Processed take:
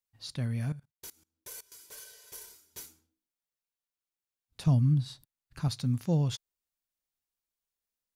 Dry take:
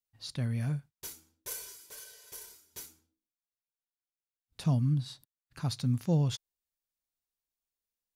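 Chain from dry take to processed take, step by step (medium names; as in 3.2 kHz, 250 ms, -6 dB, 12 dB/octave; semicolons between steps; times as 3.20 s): 0.72–1.72 s: level held to a coarse grid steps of 22 dB; 4.67–5.68 s: bass shelf 93 Hz +11 dB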